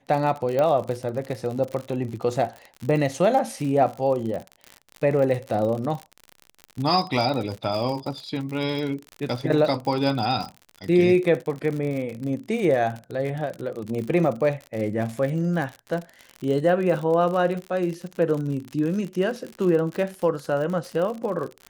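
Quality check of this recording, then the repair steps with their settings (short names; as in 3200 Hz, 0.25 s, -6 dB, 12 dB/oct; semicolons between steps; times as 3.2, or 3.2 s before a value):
crackle 59/s -29 dBFS
0.59 pop -13 dBFS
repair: de-click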